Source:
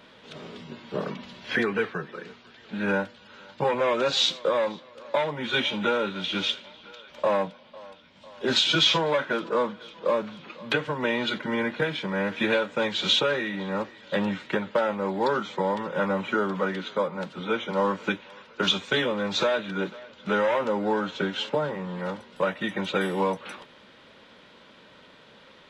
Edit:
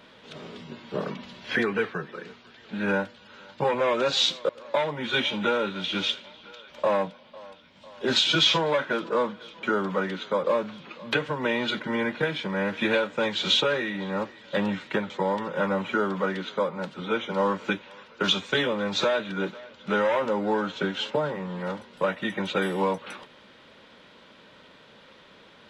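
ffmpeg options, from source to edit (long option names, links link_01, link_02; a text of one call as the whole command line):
ffmpeg -i in.wav -filter_complex "[0:a]asplit=5[link_01][link_02][link_03][link_04][link_05];[link_01]atrim=end=4.492[link_06];[link_02]atrim=start=4.888:end=10.032[link_07];[link_03]atrim=start=16.278:end=17.092[link_08];[link_04]atrim=start=10.028:end=14.692[link_09];[link_05]atrim=start=15.488[link_10];[link_06][link_07]acrossfade=duration=0.004:curve1=hsin:curve2=hsin[link_11];[link_11][link_08]acrossfade=duration=0.004:curve1=hsin:curve2=hsin[link_12];[link_12][link_09]acrossfade=duration=0.004:curve1=hsin:curve2=hsin[link_13];[link_13][link_10]acrossfade=duration=0.004:curve1=hsin:curve2=hsin" out.wav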